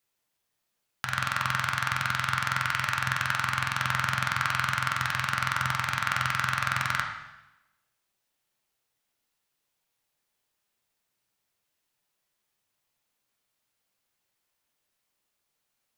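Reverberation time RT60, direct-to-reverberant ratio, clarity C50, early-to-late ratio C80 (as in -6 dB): 0.95 s, 0.5 dB, 5.0 dB, 7.0 dB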